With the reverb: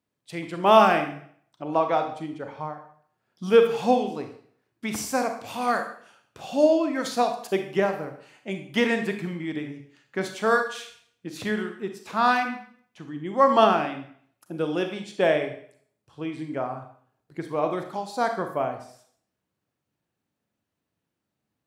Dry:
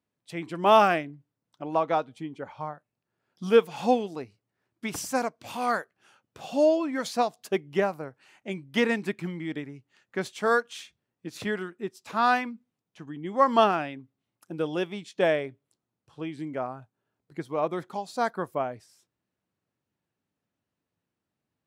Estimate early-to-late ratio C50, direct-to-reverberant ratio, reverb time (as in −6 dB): 8.0 dB, 6.0 dB, 0.60 s